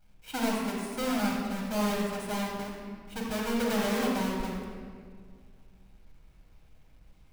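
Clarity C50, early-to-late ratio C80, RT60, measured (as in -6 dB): 0.0 dB, 2.0 dB, 1.9 s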